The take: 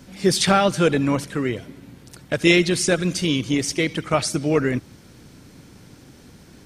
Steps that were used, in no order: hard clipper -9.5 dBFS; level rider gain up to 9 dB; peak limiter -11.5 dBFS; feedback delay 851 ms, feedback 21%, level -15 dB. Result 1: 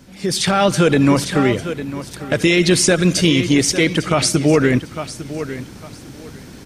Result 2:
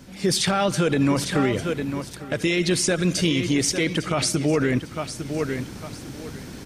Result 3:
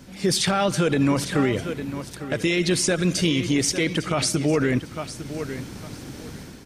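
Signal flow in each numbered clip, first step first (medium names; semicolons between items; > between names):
feedback delay > peak limiter > hard clipper > level rider; feedback delay > level rider > peak limiter > hard clipper; level rider > feedback delay > peak limiter > hard clipper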